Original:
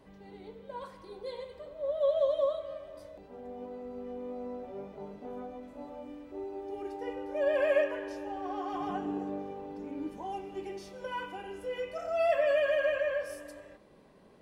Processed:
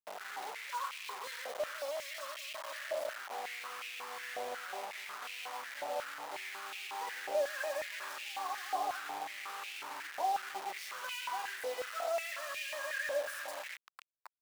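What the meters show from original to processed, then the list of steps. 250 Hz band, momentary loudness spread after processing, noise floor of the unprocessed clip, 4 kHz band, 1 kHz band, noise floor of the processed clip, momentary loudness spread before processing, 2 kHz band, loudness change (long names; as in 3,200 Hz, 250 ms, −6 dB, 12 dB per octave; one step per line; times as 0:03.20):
−21.5 dB, 7 LU, −56 dBFS, +6.5 dB, +1.5 dB, −50 dBFS, 18 LU, +1.0 dB, −5.5 dB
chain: sub-octave generator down 1 octave, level 0 dB
downward compressor 5 to 1, threshold −42 dBFS, peak gain reduction 18 dB
bit reduction 8 bits
high-pass on a step sequencer 5.5 Hz 670–2,500 Hz
level +4 dB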